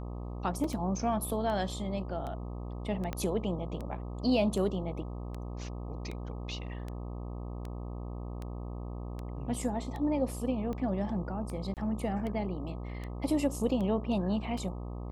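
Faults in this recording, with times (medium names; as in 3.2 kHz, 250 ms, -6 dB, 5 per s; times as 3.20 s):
buzz 60 Hz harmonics 21 -39 dBFS
tick 78 rpm
0.64 s: dropout 3.6 ms
3.13 s: pop -20 dBFS
11.74–11.77 s: dropout 28 ms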